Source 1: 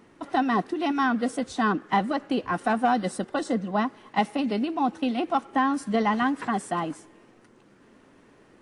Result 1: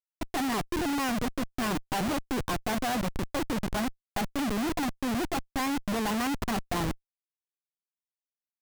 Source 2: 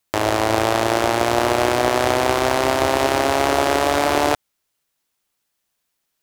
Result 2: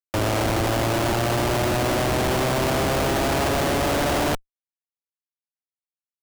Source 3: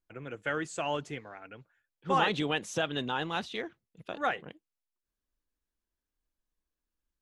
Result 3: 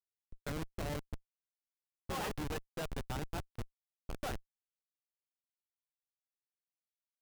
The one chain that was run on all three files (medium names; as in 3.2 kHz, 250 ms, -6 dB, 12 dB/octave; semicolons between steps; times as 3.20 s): Schmitt trigger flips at -28.5 dBFS; gate -48 dBFS, range -19 dB; trim -1.5 dB